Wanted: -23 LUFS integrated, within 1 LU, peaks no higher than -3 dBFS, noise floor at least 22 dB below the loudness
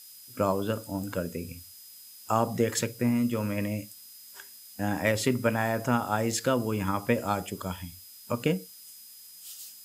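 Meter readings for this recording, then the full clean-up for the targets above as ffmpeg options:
steady tone 5000 Hz; tone level -54 dBFS; noise floor -49 dBFS; noise floor target -51 dBFS; loudness -29.0 LUFS; peak -10.5 dBFS; loudness target -23.0 LUFS
-> -af "bandreject=f=5k:w=30"
-af "afftdn=nr=6:nf=-49"
-af "volume=6dB"

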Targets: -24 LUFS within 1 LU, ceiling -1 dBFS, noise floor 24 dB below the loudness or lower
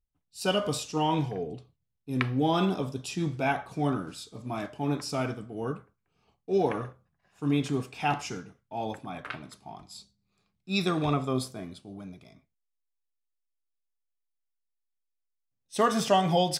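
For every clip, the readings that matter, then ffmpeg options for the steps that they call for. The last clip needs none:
loudness -30.0 LUFS; peak -8.0 dBFS; loudness target -24.0 LUFS
-> -af "volume=6dB"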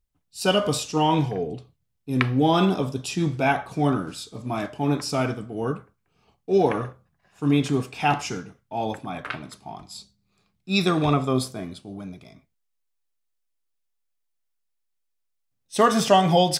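loudness -24.0 LUFS; peak -2.0 dBFS; noise floor -75 dBFS

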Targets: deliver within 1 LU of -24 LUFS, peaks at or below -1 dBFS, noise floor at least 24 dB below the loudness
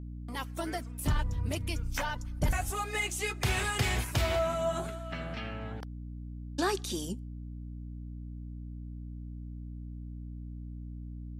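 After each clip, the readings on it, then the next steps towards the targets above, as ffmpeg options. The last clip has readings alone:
hum 60 Hz; harmonics up to 300 Hz; hum level -38 dBFS; loudness -35.0 LUFS; peak -17.5 dBFS; loudness target -24.0 LUFS
-> -af "bandreject=f=60:t=h:w=4,bandreject=f=120:t=h:w=4,bandreject=f=180:t=h:w=4,bandreject=f=240:t=h:w=4,bandreject=f=300:t=h:w=4"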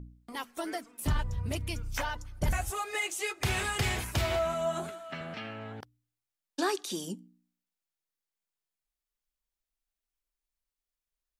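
hum none; loudness -33.5 LUFS; peak -18.0 dBFS; loudness target -24.0 LUFS
-> -af "volume=9.5dB"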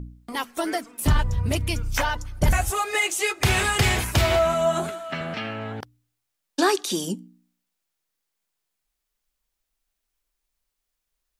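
loudness -24.0 LUFS; peak -8.5 dBFS; noise floor -81 dBFS

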